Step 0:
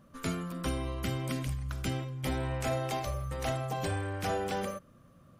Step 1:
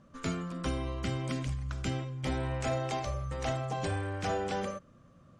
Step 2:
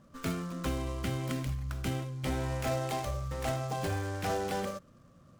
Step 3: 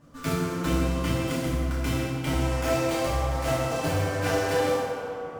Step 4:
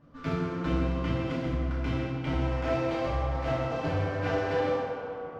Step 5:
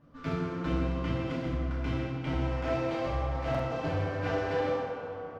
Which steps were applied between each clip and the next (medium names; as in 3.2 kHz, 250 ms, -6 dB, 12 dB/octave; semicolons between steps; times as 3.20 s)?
Chebyshev low-pass 7.5 kHz, order 3
delay time shaken by noise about 5.2 kHz, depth 0.031 ms
tape echo 155 ms, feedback 87%, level -6.5 dB, low-pass 3.3 kHz; FDN reverb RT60 1.2 s, low-frequency decay 0.95×, high-frequency decay 0.85×, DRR -7 dB
distance through air 230 m; trim -2.5 dB
delay 1164 ms -21.5 dB; buffer glitch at 3.50 s, samples 2048, times 1; trim -2 dB